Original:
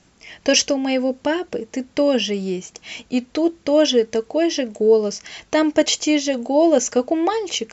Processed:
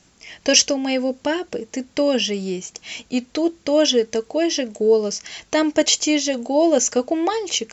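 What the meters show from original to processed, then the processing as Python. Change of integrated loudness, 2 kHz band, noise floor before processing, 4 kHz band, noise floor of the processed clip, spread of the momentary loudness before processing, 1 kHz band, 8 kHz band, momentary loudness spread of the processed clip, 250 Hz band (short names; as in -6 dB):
-0.5 dB, 0.0 dB, -56 dBFS, +2.0 dB, -56 dBFS, 10 LU, -1.0 dB, n/a, 11 LU, -1.5 dB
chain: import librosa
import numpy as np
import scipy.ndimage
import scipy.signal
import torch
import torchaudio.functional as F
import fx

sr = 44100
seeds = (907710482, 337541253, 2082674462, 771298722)

y = fx.high_shelf(x, sr, hz=4200.0, db=7.5)
y = y * librosa.db_to_amplitude(-1.5)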